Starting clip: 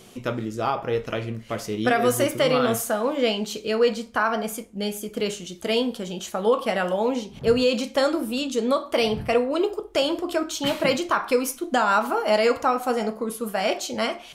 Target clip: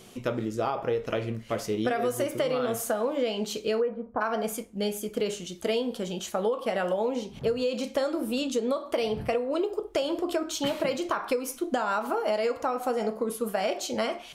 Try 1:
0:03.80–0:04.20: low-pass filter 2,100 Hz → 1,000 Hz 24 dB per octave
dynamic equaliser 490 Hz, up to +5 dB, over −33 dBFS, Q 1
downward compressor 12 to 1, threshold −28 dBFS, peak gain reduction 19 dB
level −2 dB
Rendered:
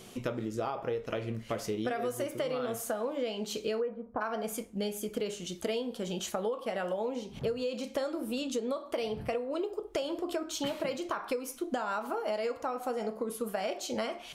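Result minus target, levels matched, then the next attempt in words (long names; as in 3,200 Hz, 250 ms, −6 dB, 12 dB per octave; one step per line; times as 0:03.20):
downward compressor: peak gain reduction +6 dB
0:03.80–0:04.20: low-pass filter 2,100 Hz → 1,000 Hz 24 dB per octave
dynamic equaliser 490 Hz, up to +5 dB, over −33 dBFS, Q 1
downward compressor 12 to 1, threshold −21.5 dBFS, peak gain reduction 13 dB
level −2 dB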